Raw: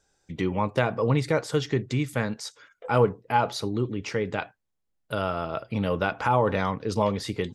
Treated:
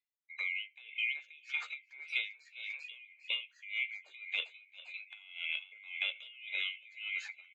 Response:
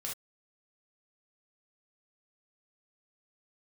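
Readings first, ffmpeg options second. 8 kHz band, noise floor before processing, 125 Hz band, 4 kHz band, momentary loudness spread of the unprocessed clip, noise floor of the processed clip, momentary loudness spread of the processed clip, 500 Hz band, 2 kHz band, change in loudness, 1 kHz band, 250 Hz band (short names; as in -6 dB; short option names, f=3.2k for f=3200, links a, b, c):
under -20 dB, -77 dBFS, under -40 dB, -1.0 dB, 9 LU, -70 dBFS, 11 LU, -39.0 dB, -2.5 dB, -11.5 dB, -34.0 dB, under -40 dB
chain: -filter_complex "[0:a]afftfilt=real='real(if(lt(b,920),b+92*(1-2*mod(floor(b/92),2)),b),0)':imag='imag(if(lt(b,920),b+92*(1-2*mod(floor(b/92),2)),b),0)':win_size=2048:overlap=0.75,equalizer=f=800:t=o:w=0.72:g=-6.5,acontrast=21,highpass=f=520:w=0.5412,highpass=f=520:w=1.3066,asplit=2[a][b];[b]adelay=727,lowpass=f=1.9k:p=1,volume=-21dB,asplit=2[c][d];[d]adelay=727,lowpass=f=1.9k:p=1,volume=0.43,asplit=2[e][f];[f]adelay=727,lowpass=f=1.9k:p=1,volume=0.43[g];[c][e][g]amix=inputs=3:normalize=0[h];[a][h]amix=inputs=2:normalize=0,afftdn=nr=25:nf=-43,lowpass=f=4.4k:w=0.5412,lowpass=f=4.4k:w=1.3066,asplit=2[i][j];[j]adelay=13,volume=-7.5dB[k];[i][k]amix=inputs=2:normalize=0,asplit=2[l][m];[m]asplit=3[n][o][p];[n]adelay=397,afreqshift=70,volume=-14.5dB[q];[o]adelay=794,afreqshift=140,volume=-23.6dB[r];[p]adelay=1191,afreqshift=210,volume=-32.7dB[s];[q][r][s]amix=inputs=3:normalize=0[t];[l][t]amix=inputs=2:normalize=0,acompressor=threshold=-29dB:ratio=8,aemphasis=mode=production:type=cd,aeval=exprs='val(0)*pow(10,-23*(0.5-0.5*cos(2*PI*1.8*n/s))/20)':c=same,volume=-3dB"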